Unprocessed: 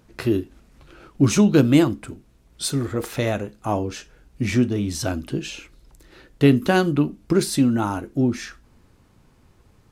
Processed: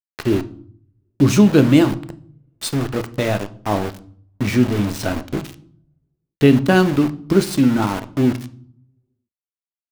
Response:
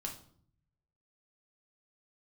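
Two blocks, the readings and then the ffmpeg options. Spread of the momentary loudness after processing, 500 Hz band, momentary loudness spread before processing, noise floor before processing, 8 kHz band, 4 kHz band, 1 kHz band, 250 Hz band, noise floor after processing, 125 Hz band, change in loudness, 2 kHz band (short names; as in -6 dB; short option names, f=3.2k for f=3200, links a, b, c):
16 LU, +3.5 dB, 15 LU, -57 dBFS, -1.0 dB, +2.0 dB, +3.0 dB, +3.5 dB, under -85 dBFS, +3.0 dB, +3.5 dB, +3.5 dB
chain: -filter_complex "[0:a]aeval=exprs='val(0)*gte(abs(val(0)),0.0501)':c=same,asplit=2[a][b];[1:a]atrim=start_sample=2205,lowpass=6k[c];[b][c]afir=irnorm=-1:irlink=0,volume=-4.5dB[d];[a][d]amix=inputs=2:normalize=0"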